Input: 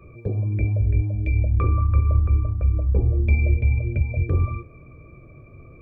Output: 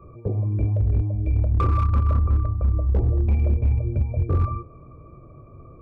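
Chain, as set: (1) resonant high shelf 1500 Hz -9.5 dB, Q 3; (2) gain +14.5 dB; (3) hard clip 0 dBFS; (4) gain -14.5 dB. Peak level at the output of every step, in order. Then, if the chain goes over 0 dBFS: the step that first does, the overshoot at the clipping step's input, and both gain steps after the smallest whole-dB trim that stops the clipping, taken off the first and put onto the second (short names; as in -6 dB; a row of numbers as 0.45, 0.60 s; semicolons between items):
-7.5, +7.0, 0.0, -14.5 dBFS; step 2, 7.0 dB; step 2 +7.5 dB, step 4 -7.5 dB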